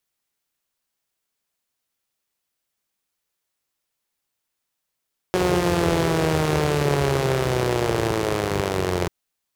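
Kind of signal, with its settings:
pulse-train model of a four-cylinder engine, changing speed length 3.74 s, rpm 5,500, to 2,600, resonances 82/140/370 Hz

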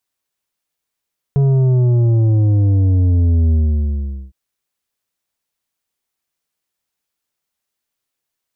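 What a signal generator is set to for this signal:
bass drop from 140 Hz, over 2.96 s, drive 8 dB, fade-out 0.80 s, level −11 dB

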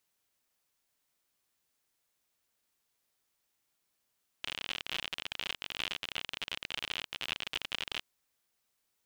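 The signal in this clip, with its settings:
Geiger counter clicks 56 per second −19.5 dBFS 3.60 s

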